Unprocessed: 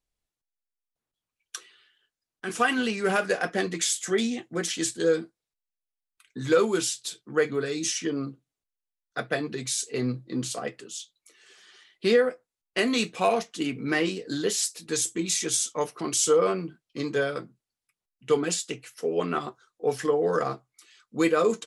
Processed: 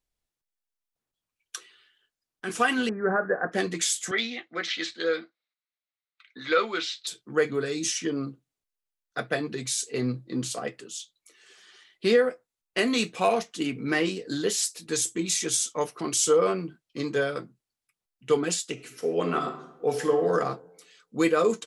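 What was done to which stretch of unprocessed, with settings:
0:02.89–0:03.52: Chebyshev low-pass filter 1,800 Hz, order 6
0:04.11–0:07.07: loudspeaker in its box 390–4,600 Hz, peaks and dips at 410 Hz −7 dB, 900 Hz −4 dB, 1,300 Hz +5 dB, 2,100 Hz +9 dB, 3,900 Hz +7 dB
0:18.72–0:20.33: thrown reverb, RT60 0.84 s, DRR 6 dB

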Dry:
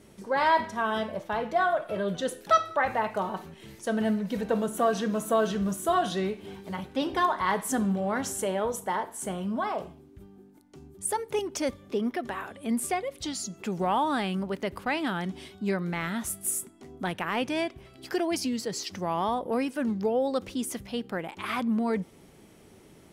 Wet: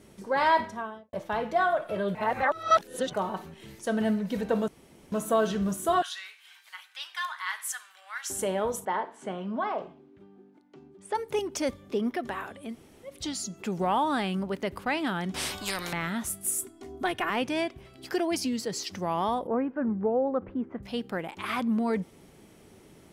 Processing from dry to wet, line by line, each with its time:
0:00.54–0:01.13: fade out and dull
0:02.15–0:03.13: reverse
0:04.68–0:05.12: fill with room tone
0:06.02–0:08.30: high-pass filter 1,400 Hz 24 dB per octave
0:08.85–0:11.15: band-pass filter 210–3,300 Hz
0:12.68–0:13.10: fill with room tone, crossfade 0.16 s
0:15.34–0:15.93: every bin compressed towards the loudest bin 4 to 1
0:16.58–0:17.30: comb filter 2.8 ms, depth 94%
0:19.47–0:20.83: low-pass filter 1,600 Hz 24 dB per octave

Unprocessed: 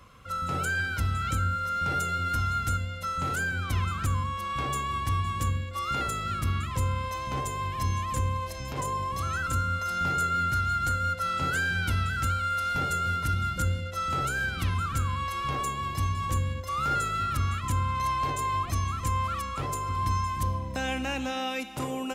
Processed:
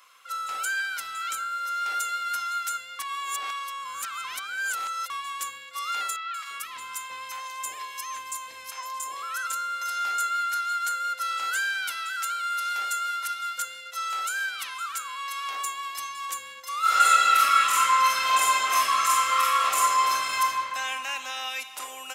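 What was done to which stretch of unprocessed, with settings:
0:02.99–0:05.10: reverse
0:06.16–0:09.45: three-band delay without the direct sound mids, highs, lows 180/340 ms, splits 730/4,100 Hz
0:11.88–0:15.46: low-shelf EQ 260 Hz −7.5 dB
0:16.80–0:20.41: thrown reverb, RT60 2.9 s, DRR −11.5 dB
whole clip: high-pass filter 930 Hz 12 dB per octave; spectral tilt +2 dB per octave

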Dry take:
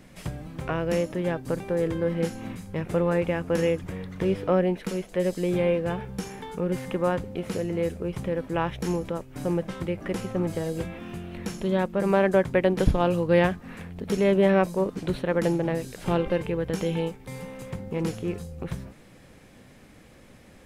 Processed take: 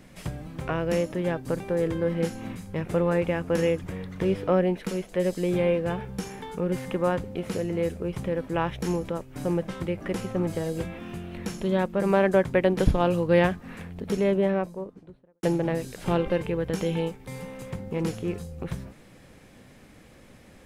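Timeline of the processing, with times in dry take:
0:13.81–0:15.43: fade out and dull

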